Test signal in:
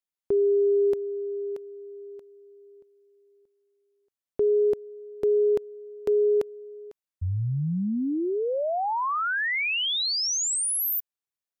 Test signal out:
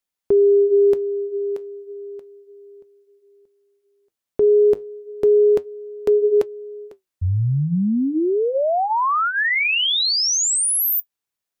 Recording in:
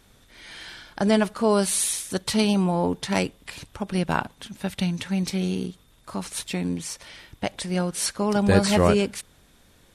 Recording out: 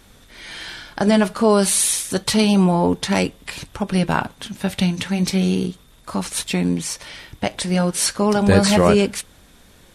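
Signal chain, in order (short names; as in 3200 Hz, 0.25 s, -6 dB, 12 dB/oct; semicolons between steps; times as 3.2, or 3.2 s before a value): in parallel at 0 dB: limiter -16 dBFS; on the sum: flange 0.32 Hz, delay 3.4 ms, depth 6.4 ms, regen -74%; gain +5.5 dB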